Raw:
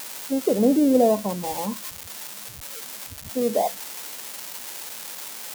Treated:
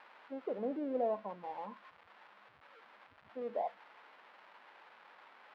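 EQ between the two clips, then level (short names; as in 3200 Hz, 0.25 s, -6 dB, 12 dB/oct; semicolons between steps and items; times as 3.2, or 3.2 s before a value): band-pass 1200 Hz, Q 0.95; air absorption 390 m; -8.5 dB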